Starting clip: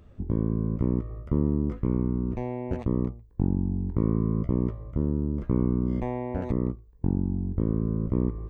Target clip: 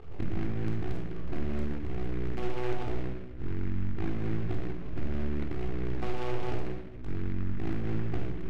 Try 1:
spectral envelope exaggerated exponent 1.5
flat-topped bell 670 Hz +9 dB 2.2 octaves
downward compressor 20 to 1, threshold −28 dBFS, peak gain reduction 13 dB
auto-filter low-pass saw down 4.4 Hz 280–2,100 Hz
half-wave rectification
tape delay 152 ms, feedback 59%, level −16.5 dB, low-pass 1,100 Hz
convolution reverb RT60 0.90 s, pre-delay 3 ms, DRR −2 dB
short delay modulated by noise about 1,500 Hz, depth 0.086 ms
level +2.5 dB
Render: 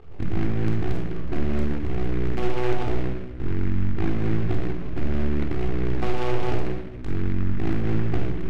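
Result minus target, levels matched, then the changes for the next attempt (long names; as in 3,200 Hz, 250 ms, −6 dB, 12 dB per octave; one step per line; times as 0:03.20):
downward compressor: peak gain reduction −8 dB
change: downward compressor 20 to 1, threshold −36.5 dBFS, peak gain reduction 21.5 dB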